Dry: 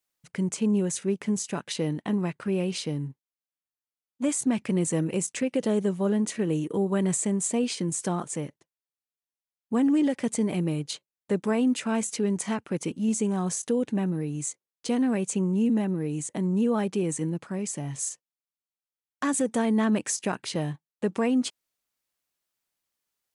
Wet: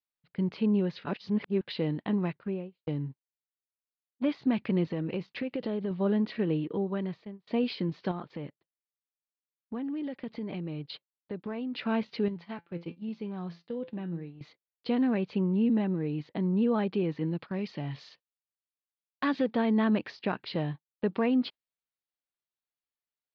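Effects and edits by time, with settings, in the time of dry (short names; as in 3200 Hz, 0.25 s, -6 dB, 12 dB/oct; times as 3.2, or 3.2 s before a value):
1.05–1.61 reverse
2.26–2.87 studio fade out
4.85–5.91 compressor, threshold -26 dBFS
6.52–7.47 fade out, to -23.5 dB
8.11–11.74 compressor 5:1, threshold -31 dBFS
12.28–14.41 resonator 170 Hz, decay 0.27 s, mix 70%
17.31–19.51 high shelf 2300 Hz +7 dB
whole clip: gate -38 dBFS, range -11 dB; steep low-pass 4600 Hz 72 dB/oct; de-esser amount 95%; gain -2 dB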